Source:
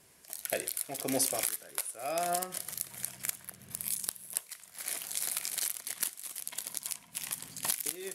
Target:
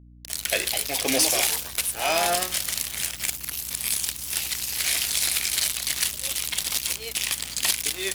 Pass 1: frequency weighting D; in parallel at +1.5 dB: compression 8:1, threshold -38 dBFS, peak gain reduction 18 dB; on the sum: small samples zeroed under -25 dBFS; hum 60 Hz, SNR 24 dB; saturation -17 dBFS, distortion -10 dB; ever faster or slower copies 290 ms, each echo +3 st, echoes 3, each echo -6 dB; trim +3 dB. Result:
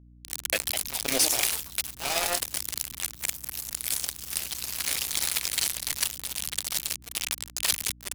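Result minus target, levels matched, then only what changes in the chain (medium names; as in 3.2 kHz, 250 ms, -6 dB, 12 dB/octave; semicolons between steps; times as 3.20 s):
compression: peak gain reduction +8.5 dB; small samples zeroed: distortion +11 dB
change: compression 8:1, threshold -28 dBFS, peak gain reduction 9 dB; change: small samples zeroed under -35.5 dBFS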